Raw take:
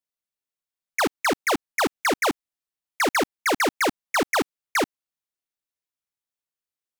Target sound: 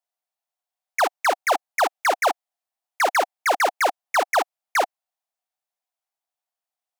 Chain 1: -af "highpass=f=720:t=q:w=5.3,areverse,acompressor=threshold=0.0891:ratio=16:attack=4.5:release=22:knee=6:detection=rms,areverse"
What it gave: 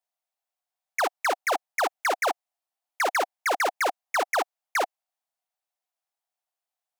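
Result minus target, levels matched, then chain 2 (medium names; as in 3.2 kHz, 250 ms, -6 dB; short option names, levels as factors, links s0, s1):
compression: peak gain reduction +7 dB
-af "highpass=f=720:t=q:w=5.3,areverse,acompressor=threshold=0.211:ratio=16:attack=4.5:release=22:knee=6:detection=rms,areverse"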